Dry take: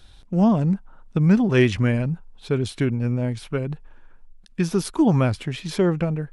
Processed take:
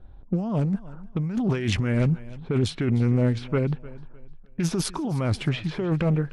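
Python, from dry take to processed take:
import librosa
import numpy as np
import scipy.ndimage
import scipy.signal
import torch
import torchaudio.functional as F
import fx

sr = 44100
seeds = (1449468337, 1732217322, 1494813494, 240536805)

p1 = fx.env_lowpass(x, sr, base_hz=680.0, full_db=-18.0)
p2 = fx.over_compress(p1, sr, threshold_db=-23.0, ratio=-1.0)
p3 = p2 + fx.echo_feedback(p2, sr, ms=304, feedback_pct=31, wet_db=-19.0, dry=0)
y = fx.doppler_dist(p3, sr, depth_ms=0.18)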